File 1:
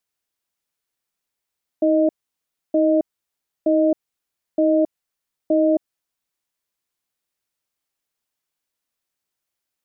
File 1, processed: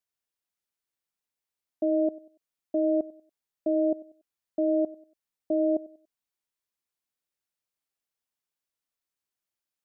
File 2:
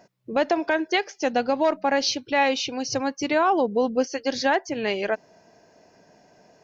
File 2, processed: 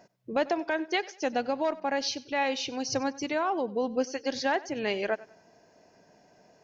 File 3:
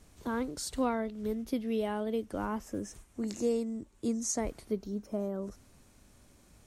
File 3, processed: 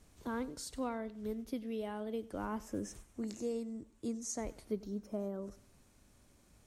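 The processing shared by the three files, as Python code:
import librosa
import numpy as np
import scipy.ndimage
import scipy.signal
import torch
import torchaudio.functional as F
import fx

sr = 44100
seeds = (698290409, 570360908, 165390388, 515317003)

p1 = fx.rider(x, sr, range_db=5, speed_s=0.5)
p2 = p1 + fx.echo_feedback(p1, sr, ms=95, feedback_pct=33, wet_db=-20.0, dry=0)
y = p2 * librosa.db_to_amplitude(-6.0)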